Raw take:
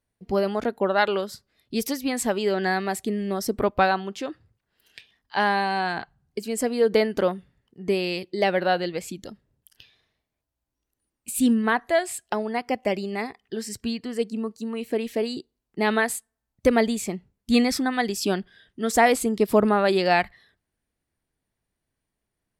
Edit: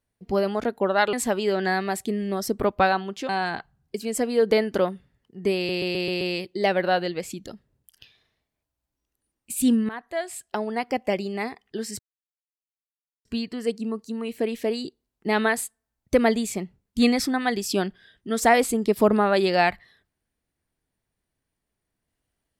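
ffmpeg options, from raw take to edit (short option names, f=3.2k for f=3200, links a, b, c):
-filter_complex "[0:a]asplit=10[a][b][c][d][e][f][g][h][i][j];[a]atrim=end=1.132[k];[b]atrim=start=2.118:end=4.282[l];[c]atrim=start=5.718:end=8.122[m];[d]atrim=start=7.988:end=8.122[n];[e]atrim=start=7.988:end=8.122[o];[f]atrim=start=7.988:end=8.122[p];[g]atrim=start=7.988:end=8.122[q];[h]atrim=start=7.988:end=11.67,asetpts=PTS-STARTPTS,afade=t=out:st=3.678:d=0.004:c=hsin:silence=0.149624[r];[i]atrim=start=11.67:end=13.77,asetpts=PTS-STARTPTS,afade=t=in:d=0.84:silence=0.149624,afade=t=out:st=2.096:d=0.004:c=hsin,apad=pad_dur=1.26[s];[j]atrim=start=13.77,asetpts=PTS-STARTPTS,afade=t=in:d=0.004:c=hsin[t];[k][l]acrossfade=d=0.004:c1=hsin:c2=hsin[u];[u][m]acrossfade=d=0.004:c1=hsin:c2=hsin[v];[v][n]acrossfade=d=0.004:c1=hsin:c2=hsin[w];[w][o]acrossfade=d=0.004:c1=hsin:c2=hsin[x];[x][p]acrossfade=d=0.004:c1=hsin:c2=hsin[y];[y][q]acrossfade=d=0.004:c1=hsin:c2=hsin[z];[r][s][t]concat=n=3:v=0:a=1[aa];[z][aa]acrossfade=d=0.004:c1=hsin:c2=hsin"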